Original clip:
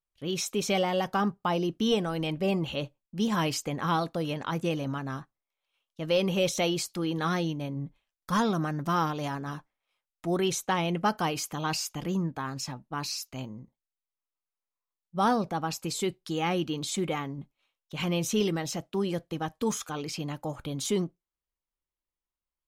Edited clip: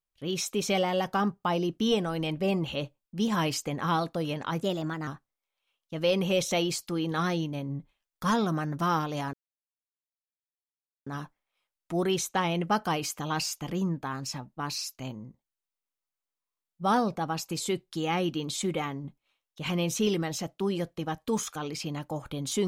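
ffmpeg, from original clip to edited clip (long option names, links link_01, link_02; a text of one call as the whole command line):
ffmpeg -i in.wav -filter_complex "[0:a]asplit=4[link_01][link_02][link_03][link_04];[link_01]atrim=end=4.634[link_05];[link_02]atrim=start=4.63:end=5.14,asetpts=PTS-STARTPTS,asetrate=50715,aresample=44100,atrim=end_sample=19557,asetpts=PTS-STARTPTS[link_06];[link_03]atrim=start=5.136:end=9.4,asetpts=PTS-STARTPTS,afade=type=out:start_time=4.26:duration=0.004:curve=hsin,apad=pad_dur=1.73[link_07];[link_04]atrim=start=9.4,asetpts=PTS-STARTPTS,afade=type=in:duration=0.004:curve=hsin[link_08];[link_05][link_06]acrossfade=duration=0.004:curve1=hsin:curve2=hsin[link_09];[link_07][link_08]concat=n=2:v=0:a=1[link_10];[link_09][link_10]acrossfade=duration=0.004:curve1=hsin:curve2=hsin" out.wav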